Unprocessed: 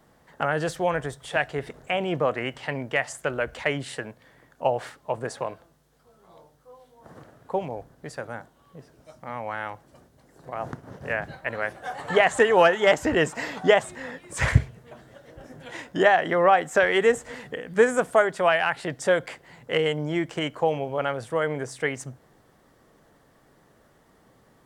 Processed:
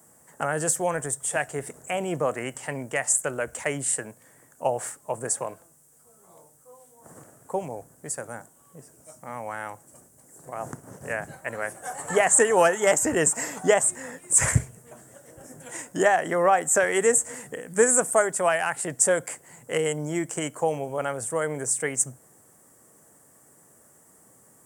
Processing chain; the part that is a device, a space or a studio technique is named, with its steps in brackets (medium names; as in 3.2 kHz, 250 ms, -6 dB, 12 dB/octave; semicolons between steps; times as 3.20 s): budget condenser microphone (high-pass 91 Hz; resonant high shelf 5.7 kHz +14 dB, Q 3); trim -1.5 dB